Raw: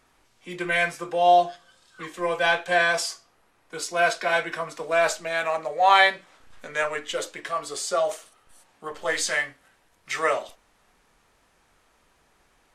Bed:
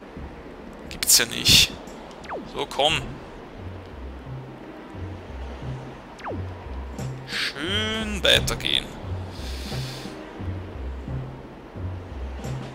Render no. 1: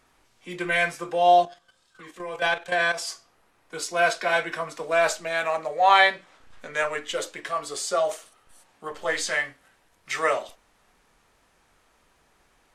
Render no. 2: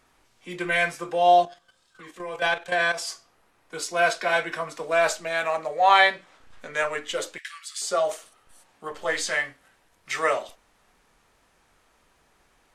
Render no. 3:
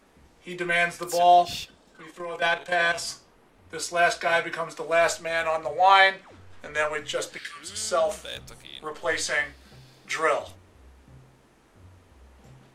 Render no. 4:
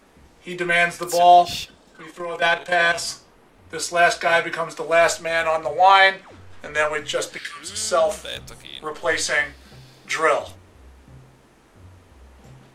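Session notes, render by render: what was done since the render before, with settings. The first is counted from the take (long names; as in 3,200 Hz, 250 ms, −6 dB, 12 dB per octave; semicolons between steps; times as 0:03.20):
0:01.45–0:03.08: output level in coarse steps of 11 dB; 0:05.80–0:06.74: high-shelf EQ 9,800 Hz −7.5 dB; 0:09.05–0:09.45: high-shelf EQ 5,800 Hz −5.5 dB
0:07.38–0:07.82: Butterworth high-pass 1,600 Hz
mix in bed −20 dB
level +5 dB; brickwall limiter −2 dBFS, peak gain reduction 3 dB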